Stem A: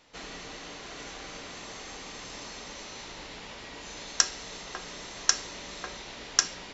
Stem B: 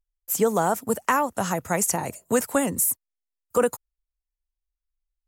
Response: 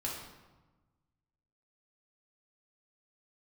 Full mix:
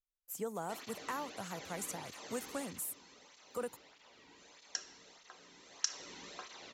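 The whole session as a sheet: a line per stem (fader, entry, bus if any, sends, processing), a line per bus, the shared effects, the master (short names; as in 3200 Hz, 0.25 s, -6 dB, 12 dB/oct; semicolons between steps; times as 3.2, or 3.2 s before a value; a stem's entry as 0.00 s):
2.63 s -7 dB -> 2.89 s -17 dB -> 5.58 s -17 dB -> 6.05 s -8.5 dB, 0.55 s, send -9 dB, tape flanging out of phase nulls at 1.6 Hz, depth 1.8 ms
-18.5 dB, 0.00 s, no send, dry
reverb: on, RT60 1.2 s, pre-delay 4 ms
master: dry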